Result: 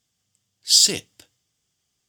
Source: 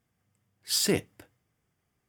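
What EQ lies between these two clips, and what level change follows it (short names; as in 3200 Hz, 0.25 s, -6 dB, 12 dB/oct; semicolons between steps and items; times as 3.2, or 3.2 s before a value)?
high shelf 3000 Hz +7.5 dB; band shelf 4800 Hz +12.5 dB; -4.5 dB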